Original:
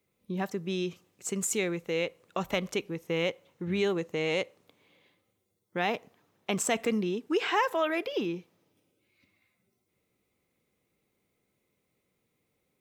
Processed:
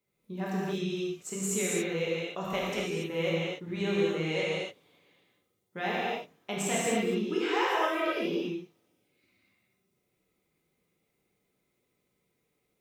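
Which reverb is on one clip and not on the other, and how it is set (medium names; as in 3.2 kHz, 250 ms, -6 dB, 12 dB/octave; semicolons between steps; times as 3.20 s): gated-style reverb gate 310 ms flat, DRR -7 dB; trim -7.5 dB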